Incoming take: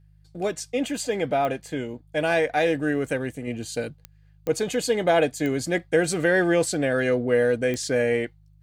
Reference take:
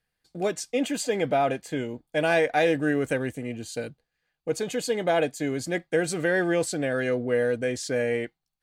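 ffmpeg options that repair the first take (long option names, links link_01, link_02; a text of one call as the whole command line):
ffmpeg -i in.wav -af "adeclick=threshold=4,bandreject=frequency=51.3:width_type=h:width=4,bandreject=frequency=102.6:width_type=h:width=4,bandreject=frequency=153.9:width_type=h:width=4,asetnsamples=nb_out_samples=441:pad=0,asendcmd='3.47 volume volume -3.5dB',volume=0dB" out.wav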